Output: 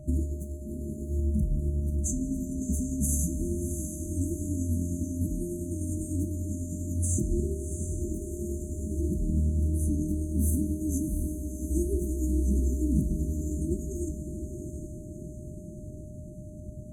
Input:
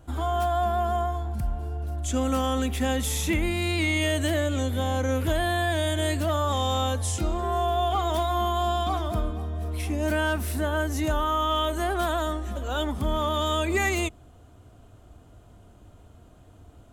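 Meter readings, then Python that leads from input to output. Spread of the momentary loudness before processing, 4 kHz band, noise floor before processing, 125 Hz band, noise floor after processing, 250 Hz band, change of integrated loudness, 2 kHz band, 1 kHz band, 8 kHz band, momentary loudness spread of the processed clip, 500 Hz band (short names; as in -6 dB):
6 LU, under -40 dB, -52 dBFS, 0.0 dB, -42 dBFS, -0.5 dB, -4.5 dB, under -40 dB, under -40 dB, 0.0 dB, 14 LU, -11.5 dB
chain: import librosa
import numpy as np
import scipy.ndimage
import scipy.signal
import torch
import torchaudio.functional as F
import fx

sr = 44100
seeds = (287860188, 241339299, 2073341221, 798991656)

y = 10.0 ** (-21.0 / 20.0) * np.tanh(x / 10.0 ** (-21.0 / 20.0))
y = fx.graphic_eq_15(y, sr, hz=(160, 2500, 10000), db=(11, 11, 5))
y = fx.tremolo_shape(y, sr, shape='saw_up', hz=10.0, depth_pct=40)
y = fx.high_shelf(y, sr, hz=8300.0, db=-9.0)
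y = fx.over_compress(y, sr, threshold_db=-30.0, ratio=-0.5)
y = fx.brickwall_bandstop(y, sr, low_hz=410.0, high_hz=6000.0)
y = fx.echo_diffused(y, sr, ms=707, feedback_pct=54, wet_db=-7.5)
y = fx.rev_double_slope(y, sr, seeds[0], early_s=0.32, late_s=4.0, knee_db=-18, drr_db=8.5)
y = y + 10.0 ** (-54.0 / 20.0) * np.sin(2.0 * np.pi * 610.0 * np.arange(len(y)) / sr)
y = y * 10.0 ** (4.0 / 20.0)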